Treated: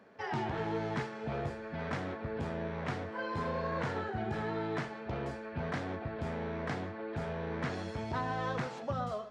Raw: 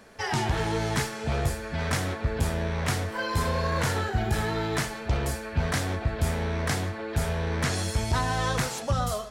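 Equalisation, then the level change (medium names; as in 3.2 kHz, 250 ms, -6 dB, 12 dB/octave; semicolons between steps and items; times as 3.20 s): high-pass 160 Hz 12 dB/octave; tape spacing loss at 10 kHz 30 dB; -4.0 dB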